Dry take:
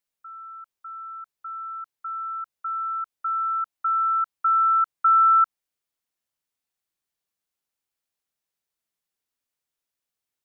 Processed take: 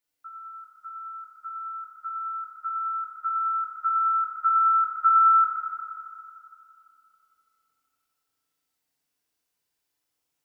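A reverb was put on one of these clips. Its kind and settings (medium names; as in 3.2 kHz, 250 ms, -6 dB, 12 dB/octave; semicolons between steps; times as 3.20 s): FDN reverb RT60 2.8 s, high-frequency decay 0.85×, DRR -6 dB; trim -1 dB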